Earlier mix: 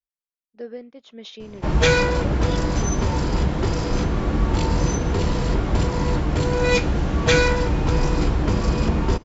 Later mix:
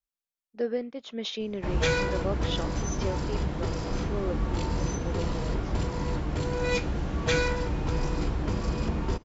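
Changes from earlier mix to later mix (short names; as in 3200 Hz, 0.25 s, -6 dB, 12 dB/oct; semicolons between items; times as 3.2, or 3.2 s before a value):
speech +5.5 dB; background -8.5 dB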